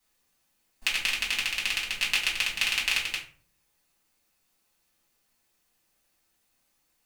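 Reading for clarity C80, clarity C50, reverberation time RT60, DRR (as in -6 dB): 13.0 dB, 8.0 dB, 0.45 s, -6.0 dB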